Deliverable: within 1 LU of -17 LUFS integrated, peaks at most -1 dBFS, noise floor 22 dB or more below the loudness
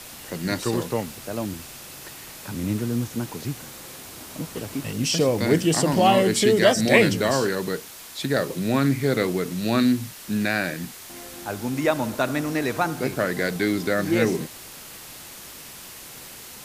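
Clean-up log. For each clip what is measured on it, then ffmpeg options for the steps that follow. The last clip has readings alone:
noise floor -41 dBFS; noise floor target -45 dBFS; loudness -23.0 LUFS; peak -3.0 dBFS; loudness target -17.0 LUFS
-> -af "afftdn=nr=6:nf=-41"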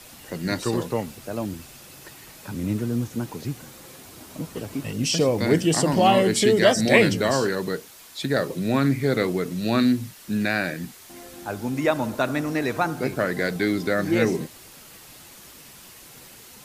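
noise floor -46 dBFS; loudness -23.5 LUFS; peak -3.0 dBFS; loudness target -17.0 LUFS
-> -af "volume=6.5dB,alimiter=limit=-1dB:level=0:latency=1"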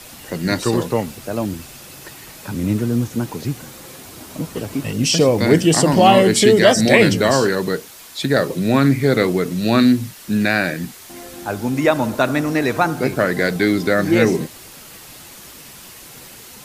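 loudness -17.0 LUFS; peak -1.0 dBFS; noise floor -40 dBFS

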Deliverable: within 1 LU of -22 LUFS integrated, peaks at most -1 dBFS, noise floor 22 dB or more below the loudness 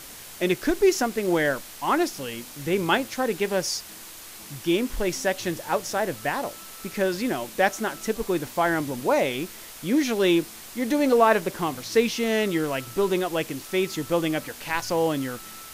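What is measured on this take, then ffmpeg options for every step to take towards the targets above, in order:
noise floor -42 dBFS; noise floor target -47 dBFS; loudness -25.0 LUFS; peak -7.0 dBFS; loudness target -22.0 LUFS
-> -af "afftdn=nr=6:nf=-42"
-af "volume=3dB"

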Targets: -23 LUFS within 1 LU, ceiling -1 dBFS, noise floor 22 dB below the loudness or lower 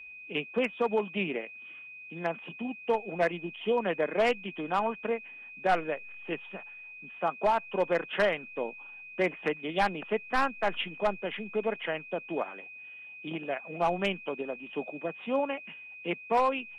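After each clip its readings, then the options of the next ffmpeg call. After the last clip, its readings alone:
steady tone 2500 Hz; tone level -44 dBFS; loudness -31.5 LUFS; peak -16.0 dBFS; loudness target -23.0 LUFS
-> -af "bandreject=f=2.5k:w=30"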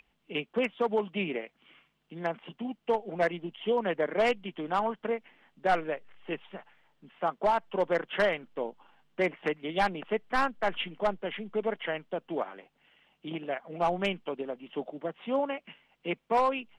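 steady tone none; loudness -31.5 LUFS; peak -15.5 dBFS; loudness target -23.0 LUFS
-> -af "volume=8.5dB"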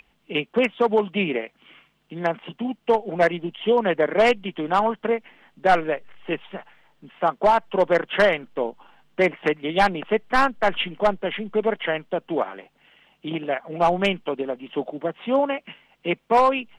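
loudness -23.0 LUFS; peak -7.0 dBFS; noise floor -66 dBFS

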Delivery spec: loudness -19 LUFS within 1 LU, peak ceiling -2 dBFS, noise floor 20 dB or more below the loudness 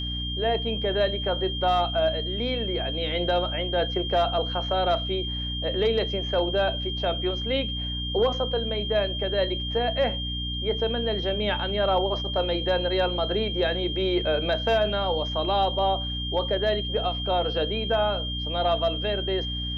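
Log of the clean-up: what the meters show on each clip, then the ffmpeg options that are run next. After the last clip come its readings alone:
hum 60 Hz; harmonics up to 300 Hz; hum level -30 dBFS; steady tone 3200 Hz; tone level -31 dBFS; loudness -25.5 LUFS; peak -12.0 dBFS; loudness target -19.0 LUFS
-> -af "bandreject=f=60:t=h:w=4,bandreject=f=120:t=h:w=4,bandreject=f=180:t=h:w=4,bandreject=f=240:t=h:w=4,bandreject=f=300:t=h:w=4"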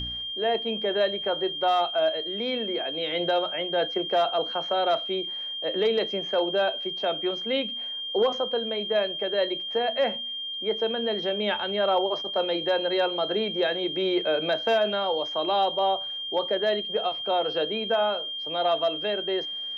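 hum none; steady tone 3200 Hz; tone level -31 dBFS
-> -af "bandreject=f=3.2k:w=30"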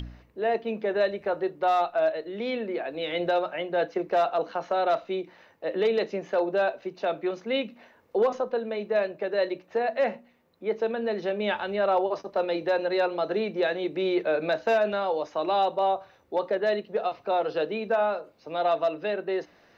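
steady tone none; loudness -27.5 LUFS; peak -14.5 dBFS; loudness target -19.0 LUFS
-> -af "volume=8.5dB"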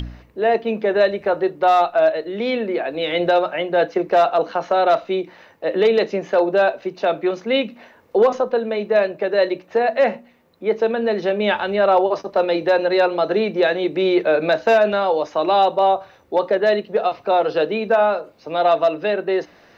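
loudness -19.0 LUFS; peak -6.0 dBFS; noise floor -51 dBFS

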